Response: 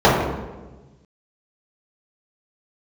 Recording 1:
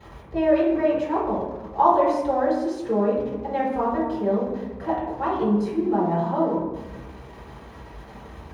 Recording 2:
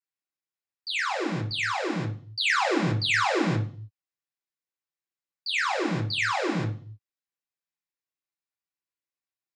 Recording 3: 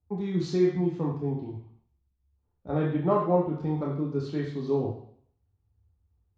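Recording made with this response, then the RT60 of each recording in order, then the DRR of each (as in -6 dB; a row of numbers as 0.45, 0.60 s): 1; 1.2, 0.45, 0.60 s; -11.0, -3.0, -3.0 dB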